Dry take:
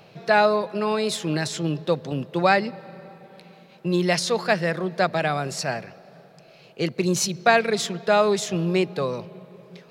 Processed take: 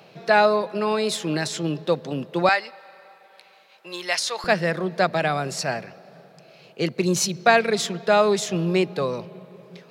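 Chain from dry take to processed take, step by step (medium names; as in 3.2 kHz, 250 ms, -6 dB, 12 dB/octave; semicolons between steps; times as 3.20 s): high-pass 160 Hz 12 dB/octave, from 2.49 s 850 Hz, from 4.44 s 110 Hz; trim +1 dB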